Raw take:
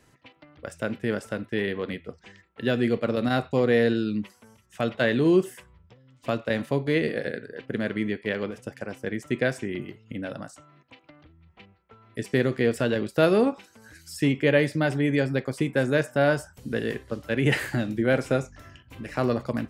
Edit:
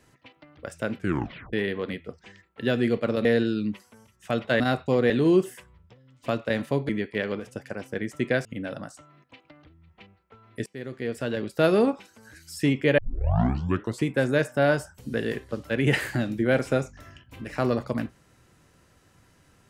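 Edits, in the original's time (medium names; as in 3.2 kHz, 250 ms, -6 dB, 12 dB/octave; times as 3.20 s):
0.98 s: tape stop 0.55 s
3.25–3.75 s: move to 5.10 s
6.89–8.00 s: delete
9.56–10.04 s: delete
12.25–13.35 s: fade in, from -23 dB
14.57 s: tape start 1.07 s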